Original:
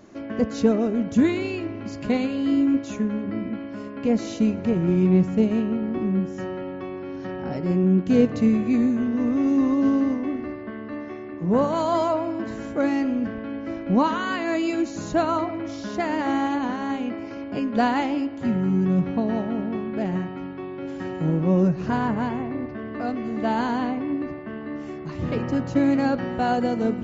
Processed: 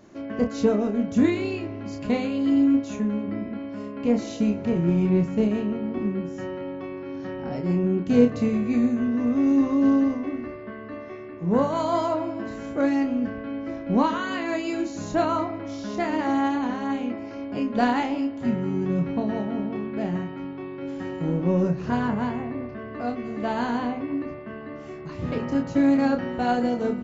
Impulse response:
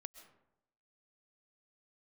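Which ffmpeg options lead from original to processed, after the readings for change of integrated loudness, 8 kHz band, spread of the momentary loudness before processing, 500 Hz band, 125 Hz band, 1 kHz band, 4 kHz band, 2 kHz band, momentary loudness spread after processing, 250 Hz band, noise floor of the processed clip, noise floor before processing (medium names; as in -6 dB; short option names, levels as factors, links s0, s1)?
-1.0 dB, no reading, 12 LU, -1.0 dB, -2.5 dB, -1.5 dB, -1.5 dB, -1.5 dB, 13 LU, -1.0 dB, -38 dBFS, -35 dBFS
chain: -filter_complex "[0:a]aeval=exprs='0.501*(cos(1*acos(clip(val(0)/0.501,-1,1)))-cos(1*PI/2))+0.00708*(cos(7*acos(clip(val(0)/0.501,-1,1)))-cos(7*PI/2))':c=same,asplit=2[s0][s1];[s1]adelay=29,volume=0.531[s2];[s0][s2]amix=inputs=2:normalize=0,volume=0.794"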